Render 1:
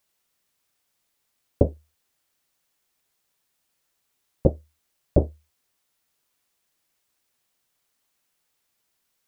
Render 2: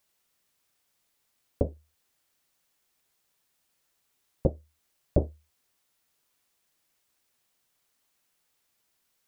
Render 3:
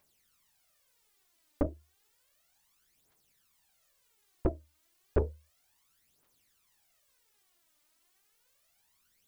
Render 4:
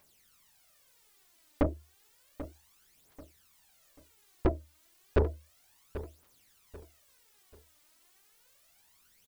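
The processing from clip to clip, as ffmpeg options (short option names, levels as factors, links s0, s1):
-af "alimiter=limit=0.316:level=0:latency=1:release=360"
-af "aphaser=in_gain=1:out_gain=1:delay=3.4:decay=0.67:speed=0.32:type=triangular,asoftclip=type=tanh:threshold=0.106"
-af "asoftclip=type=tanh:threshold=0.0531,aecho=1:1:788|1576|2364:0.2|0.0658|0.0217,volume=2.11"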